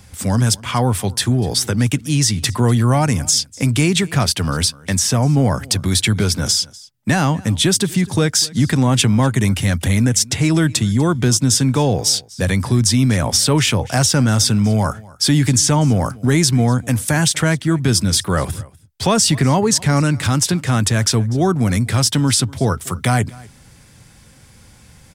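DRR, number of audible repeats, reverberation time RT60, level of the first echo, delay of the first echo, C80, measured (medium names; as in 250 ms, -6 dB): no reverb, 1, no reverb, -22.5 dB, 246 ms, no reverb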